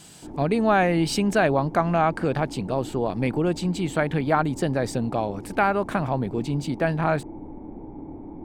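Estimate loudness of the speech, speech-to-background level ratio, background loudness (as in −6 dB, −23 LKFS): −24.0 LKFS, 15.5 dB, −39.5 LKFS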